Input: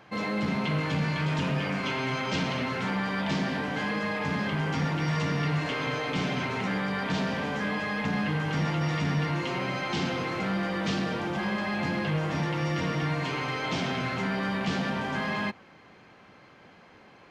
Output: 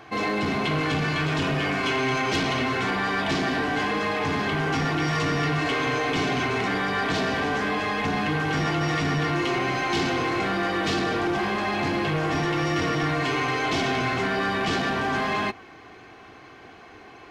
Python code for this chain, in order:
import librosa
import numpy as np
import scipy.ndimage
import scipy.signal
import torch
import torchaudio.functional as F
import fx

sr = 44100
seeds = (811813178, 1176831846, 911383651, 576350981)

y = x + 0.61 * np.pad(x, (int(2.7 * sr / 1000.0), 0))[:len(x)]
y = 10.0 ** (-24.0 / 20.0) * np.tanh(y / 10.0 ** (-24.0 / 20.0))
y = fx.quant_float(y, sr, bits=8)
y = y * 10.0 ** (6.5 / 20.0)